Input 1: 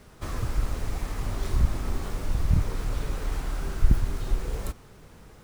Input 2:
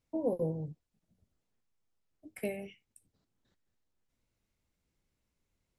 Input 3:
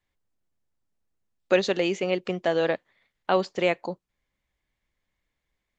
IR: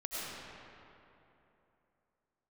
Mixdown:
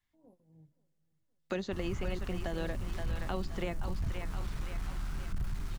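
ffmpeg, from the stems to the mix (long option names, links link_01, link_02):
-filter_complex "[0:a]asoftclip=type=tanh:threshold=-20dB,adelay=1500,volume=-3.5dB[link_01];[1:a]acompressor=threshold=-34dB:ratio=4,tremolo=f=3.4:d=0.79,volume=-15dB,asplit=3[link_02][link_03][link_04];[link_03]volume=-24dB[link_05];[link_04]volume=-20.5dB[link_06];[2:a]bandreject=frequency=2400:width=17,volume=-1dB,asplit=2[link_07][link_08];[link_08]volume=-11dB[link_09];[3:a]atrim=start_sample=2205[link_10];[link_05][link_10]afir=irnorm=-1:irlink=0[link_11];[link_06][link_09]amix=inputs=2:normalize=0,aecho=0:1:522|1044|1566|2088|2610|3132:1|0.44|0.194|0.0852|0.0375|0.0165[link_12];[link_01][link_02][link_07][link_11][link_12]amix=inputs=5:normalize=0,equalizer=frequency=490:width_type=o:width=1.1:gain=-11.5,acrossover=split=560|1800|5500[link_13][link_14][link_15][link_16];[link_13]acompressor=threshold=-29dB:ratio=4[link_17];[link_14]acompressor=threshold=-43dB:ratio=4[link_18];[link_15]acompressor=threshold=-51dB:ratio=4[link_19];[link_16]acompressor=threshold=-58dB:ratio=4[link_20];[link_17][link_18][link_19][link_20]amix=inputs=4:normalize=0,tremolo=f=160:d=0.333"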